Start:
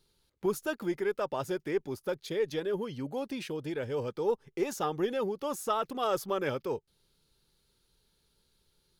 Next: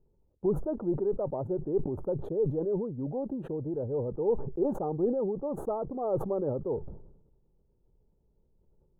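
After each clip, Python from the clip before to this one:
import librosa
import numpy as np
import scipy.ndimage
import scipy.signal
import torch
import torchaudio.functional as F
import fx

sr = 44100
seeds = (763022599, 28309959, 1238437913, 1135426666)

y = scipy.signal.sosfilt(scipy.signal.cheby2(4, 50, 2000.0, 'lowpass', fs=sr, output='sos'), x)
y = fx.low_shelf(y, sr, hz=72.0, db=6.5)
y = fx.sustainer(y, sr, db_per_s=64.0)
y = y * 10.0 ** (1.5 / 20.0)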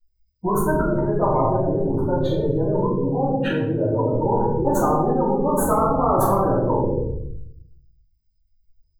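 y = fx.bin_expand(x, sr, power=2.0)
y = fx.room_shoebox(y, sr, seeds[0], volume_m3=140.0, walls='mixed', distance_m=2.7)
y = fx.spectral_comp(y, sr, ratio=10.0)
y = y * 10.0 ** (-3.0 / 20.0)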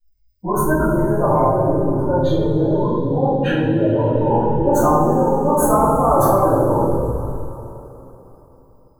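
y = fx.rev_double_slope(x, sr, seeds[1], early_s=0.24, late_s=3.7, knee_db=-20, drr_db=-6.5)
y = y * 10.0 ** (-3.0 / 20.0)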